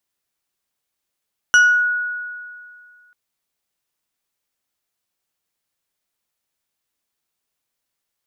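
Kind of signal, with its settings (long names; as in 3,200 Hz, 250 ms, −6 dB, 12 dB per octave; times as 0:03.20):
two-operator FM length 1.59 s, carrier 1,460 Hz, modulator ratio 3, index 0.57, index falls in 0.47 s exponential, decay 2.14 s, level −7 dB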